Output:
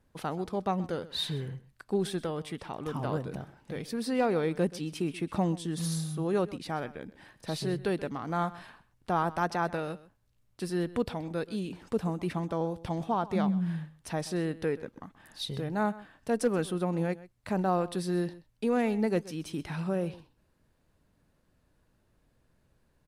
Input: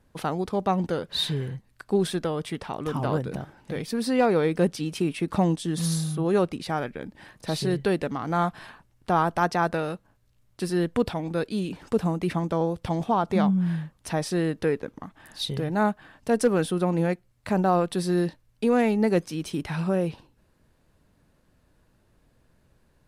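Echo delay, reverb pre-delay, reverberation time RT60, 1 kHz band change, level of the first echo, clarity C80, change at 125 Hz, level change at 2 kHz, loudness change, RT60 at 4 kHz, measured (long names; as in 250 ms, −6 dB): 129 ms, no reverb audible, no reverb audible, −6.0 dB, −18.5 dB, no reverb audible, −6.0 dB, −6.0 dB, −6.0 dB, no reverb audible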